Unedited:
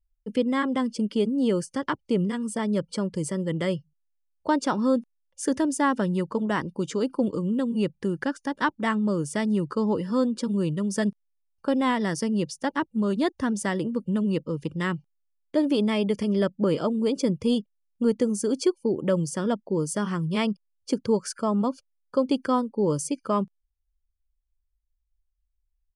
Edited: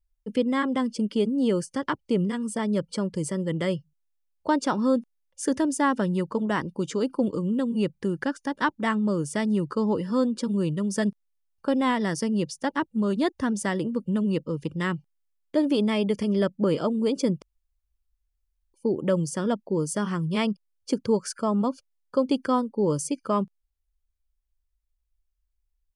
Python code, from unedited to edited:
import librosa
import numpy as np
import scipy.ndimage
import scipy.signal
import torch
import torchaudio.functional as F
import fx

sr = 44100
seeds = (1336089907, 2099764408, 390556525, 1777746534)

y = fx.edit(x, sr, fx.room_tone_fill(start_s=17.42, length_s=1.32), tone=tone)